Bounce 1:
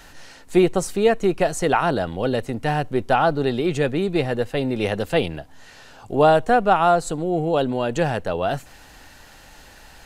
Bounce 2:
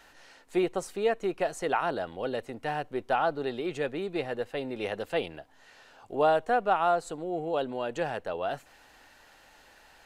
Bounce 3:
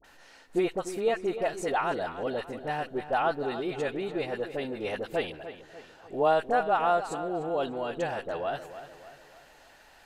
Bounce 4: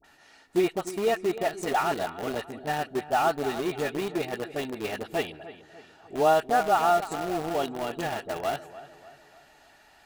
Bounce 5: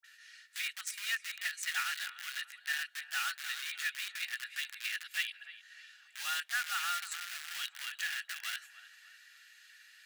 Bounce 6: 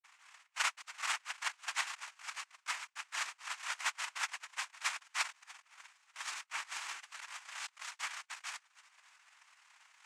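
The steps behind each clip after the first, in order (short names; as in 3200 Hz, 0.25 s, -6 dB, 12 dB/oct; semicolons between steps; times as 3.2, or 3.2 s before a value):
tone controls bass -11 dB, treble -5 dB; gain -8 dB
dispersion highs, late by 44 ms, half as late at 1000 Hz; on a send: darkening echo 0.297 s, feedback 48%, low-pass 4300 Hz, level -12 dB
notch comb 520 Hz; in parallel at -7 dB: bit-crush 5-bit
elliptic high-pass 1600 Hz, stop band 80 dB; gain +2 dB
transient shaper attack +6 dB, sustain -9 dB; band-pass 2400 Hz, Q 12; noise vocoder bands 4; gain +6.5 dB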